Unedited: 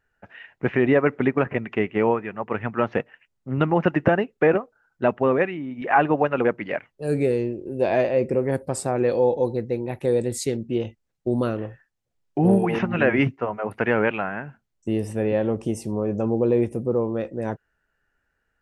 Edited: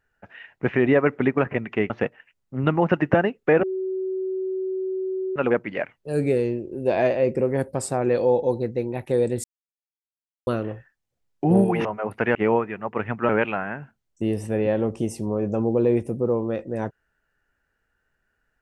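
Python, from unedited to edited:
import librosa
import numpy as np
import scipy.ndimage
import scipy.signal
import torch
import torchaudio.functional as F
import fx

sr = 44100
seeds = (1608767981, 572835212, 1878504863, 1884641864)

y = fx.edit(x, sr, fx.move(start_s=1.9, length_s=0.94, to_s=13.95),
    fx.bleep(start_s=4.57, length_s=1.73, hz=377.0, db=-24.0),
    fx.silence(start_s=10.38, length_s=1.03),
    fx.cut(start_s=12.79, length_s=0.66), tone=tone)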